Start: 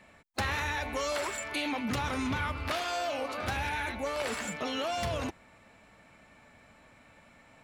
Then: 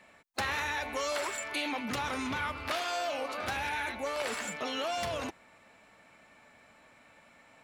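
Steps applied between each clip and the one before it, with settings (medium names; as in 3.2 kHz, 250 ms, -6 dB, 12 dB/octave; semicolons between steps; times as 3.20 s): bass shelf 180 Hz -11.5 dB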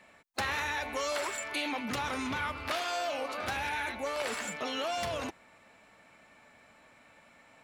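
no audible change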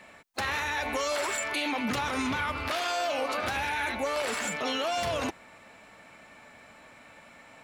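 peak limiter -28.5 dBFS, peak gain reduction 6.5 dB; trim +7 dB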